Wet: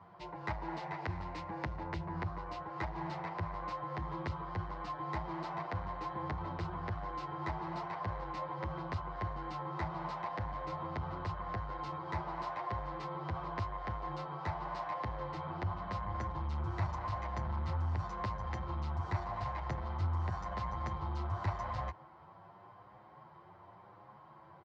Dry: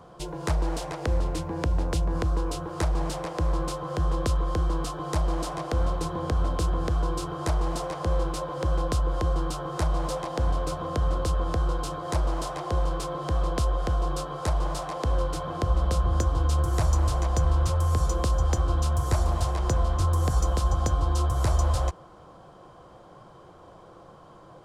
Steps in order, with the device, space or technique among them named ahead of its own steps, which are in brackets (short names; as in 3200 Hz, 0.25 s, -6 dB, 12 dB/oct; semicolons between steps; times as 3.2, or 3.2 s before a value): 0.95–1.76 high shelf 3800 Hz +6 dB; barber-pole flanger into a guitar amplifier (endless flanger 8.4 ms +0.89 Hz; soft clip -21.5 dBFS, distortion -17 dB; speaker cabinet 100–4100 Hz, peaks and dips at 100 Hz +8 dB, 280 Hz -5 dB, 480 Hz -8 dB, 910 Hz +9 dB, 2000 Hz +10 dB, 3300 Hz -6 dB); gain -5.5 dB